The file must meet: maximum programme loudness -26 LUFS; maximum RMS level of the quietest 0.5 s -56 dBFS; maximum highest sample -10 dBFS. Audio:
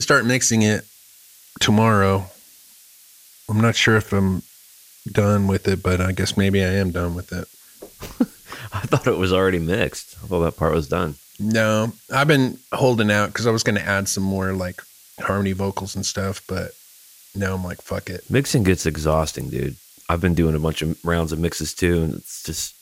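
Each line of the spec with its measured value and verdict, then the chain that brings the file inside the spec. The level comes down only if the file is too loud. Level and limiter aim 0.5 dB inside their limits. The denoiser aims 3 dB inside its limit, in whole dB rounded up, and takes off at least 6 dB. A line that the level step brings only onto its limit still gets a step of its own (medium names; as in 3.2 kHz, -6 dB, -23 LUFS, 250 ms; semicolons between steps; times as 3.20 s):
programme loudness -21.0 LUFS: fail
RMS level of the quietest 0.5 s -49 dBFS: fail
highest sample -4.5 dBFS: fail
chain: noise reduction 6 dB, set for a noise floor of -49 dBFS; trim -5.5 dB; peak limiter -10.5 dBFS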